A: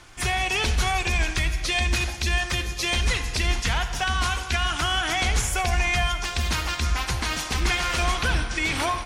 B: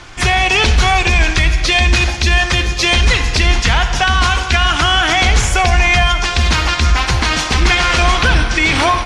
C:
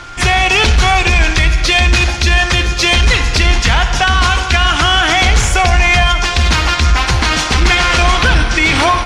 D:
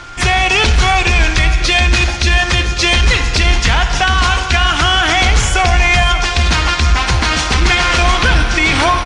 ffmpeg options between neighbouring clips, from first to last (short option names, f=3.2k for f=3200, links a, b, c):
-filter_complex "[0:a]lowpass=6.2k,asplit=2[a][b];[b]alimiter=limit=-18.5dB:level=0:latency=1:release=31,volume=1dB[c];[a][c]amix=inputs=2:normalize=0,volume=6.5dB"
-filter_complex "[0:a]asplit=2[a][b];[b]acontrast=37,volume=0.5dB[c];[a][c]amix=inputs=2:normalize=0,aeval=exprs='val(0)+0.0631*sin(2*PI*1400*n/s)':c=same,volume=-7dB"
-af "aecho=1:1:553:0.2,aresample=22050,aresample=44100,volume=-1dB"